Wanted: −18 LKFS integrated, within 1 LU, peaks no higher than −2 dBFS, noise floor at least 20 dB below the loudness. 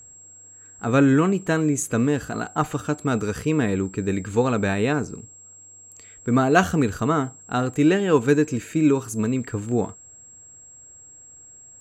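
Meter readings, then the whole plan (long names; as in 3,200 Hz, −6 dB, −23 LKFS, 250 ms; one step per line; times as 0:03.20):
interfering tone 7,600 Hz; level of the tone −44 dBFS; integrated loudness −22.0 LKFS; sample peak −4.0 dBFS; target loudness −18.0 LKFS
→ notch filter 7,600 Hz, Q 30
level +4 dB
brickwall limiter −2 dBFS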